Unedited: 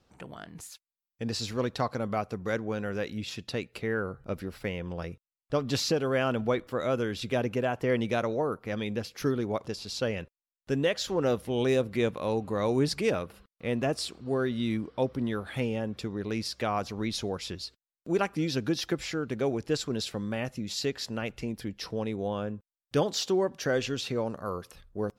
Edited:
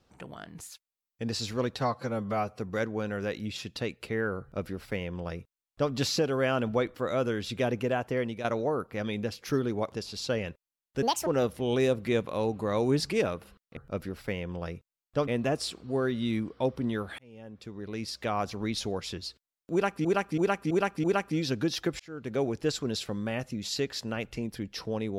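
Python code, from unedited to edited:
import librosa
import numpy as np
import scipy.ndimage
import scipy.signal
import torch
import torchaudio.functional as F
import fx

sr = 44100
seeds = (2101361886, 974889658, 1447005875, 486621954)

y = fx.edit(x, sr, fx.stretch_span(start_s=1.76, length_s=0.55, factor=1.5),
    fx.duplicate(start_s=4.13, length_s=1.51, to_s=13.65),
    fx.fade_out_to(start_s=7.71, length_s=0.46, floor_db=-10.0),
    fx.speed_span(start_s=10.75, length_s=0.4, speed=1.66),
    fx.fade_in_span(start_s=15.56, length_s=1.24),
    fx.repeat(start_s=18.09, length_s=0.33, count=5),
    fx.fade_in_span(start_s=19.05, length_s=0.4), tone=tone)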